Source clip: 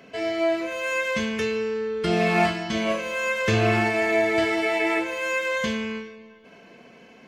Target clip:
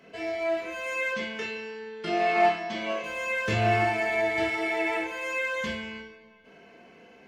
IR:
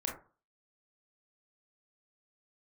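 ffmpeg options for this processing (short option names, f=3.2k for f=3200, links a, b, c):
-filter_complex "[0:a]asettb=1/sr,asplit=3[a][b][c];[a]atrim=end=1.124[d];[b]atrim=start=1.12:end=3.04,asetpts=PTS-STARTPTS,afade=t=in:d=0.004:c=qsin,afade=t=out:st=1.916:d=0.004:c=qsin,highpass=210,lowpass=6.3k[e];[c]atrim=start=3.036[f];[d][e]acrossfade=d=0.004:c1=hsin:c2=qsin[g];[g][f]acrossfade=d=0.004:c1=qsin:c2=hsin[h];[1:a]atrim=start_sample=2205,asetrate=61740,aresample=44100[i];[h][i]afir=irnorm=-1:irlink=0,volume=-3dB"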